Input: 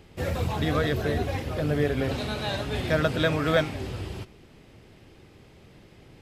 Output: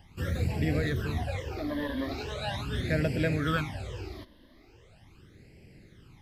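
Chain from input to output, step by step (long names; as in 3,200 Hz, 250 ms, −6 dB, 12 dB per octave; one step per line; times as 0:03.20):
0:00.80–0:02.33: asymmetric clip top −23.5 dBFS
all-pass phaser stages 12, 0.4 Hz, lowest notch 130–1,200 Hz
level −1.5 dB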